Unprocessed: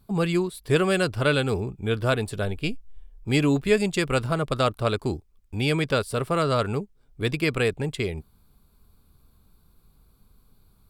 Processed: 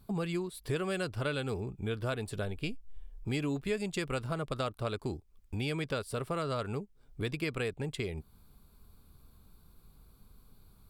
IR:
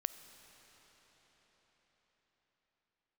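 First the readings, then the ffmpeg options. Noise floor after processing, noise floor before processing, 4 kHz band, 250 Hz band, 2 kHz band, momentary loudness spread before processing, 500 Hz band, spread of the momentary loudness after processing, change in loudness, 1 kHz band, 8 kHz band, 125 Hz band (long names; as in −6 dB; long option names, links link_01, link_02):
−63 dBFS, −61 dBFS, −11.0 dB, −10.5 dB, −11.0 dB, 10 LU, −11.0 dB, 7 LU, −11.0 dB, −11.0 dB, −9.5 dB, −9.5 dB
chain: -af "acompressor=threshold=-36dB:ratio=2.5"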